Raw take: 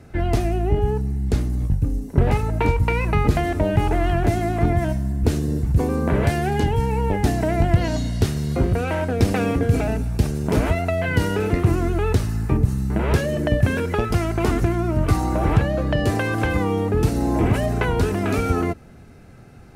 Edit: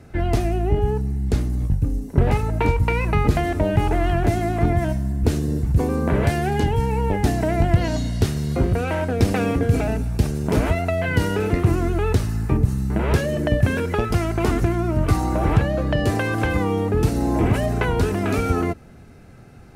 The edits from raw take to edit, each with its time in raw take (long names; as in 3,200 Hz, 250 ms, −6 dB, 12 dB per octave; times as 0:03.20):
nothing was edited